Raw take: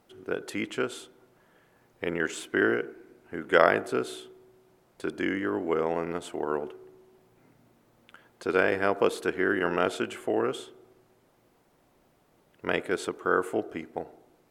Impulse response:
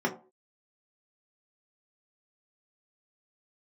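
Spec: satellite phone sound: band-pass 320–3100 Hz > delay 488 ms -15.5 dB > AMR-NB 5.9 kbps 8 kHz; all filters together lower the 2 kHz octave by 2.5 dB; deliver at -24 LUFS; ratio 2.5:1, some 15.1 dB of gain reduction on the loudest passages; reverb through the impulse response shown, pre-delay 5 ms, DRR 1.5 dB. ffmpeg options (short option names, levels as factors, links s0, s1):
-filter_complex "[0:a]equalizer=f=2000:t=o:g=-3,acompressor=threshold=0.0126:ratio=2.5,asplit=2[s0][s1];[1:a]atrim=start_sample=2205,adelay=5[s2];[s1][s2]afir=irnorm=-1:irlink=0,volume=0.266[s3];[s0][s3]amix=inputs=2:normalize=0,highpass=320,lowpass=3100,aecho=1:1:488:0.168,volume=5.01" -ar 8000 -c:a libopencore_amrnb -b:a 5900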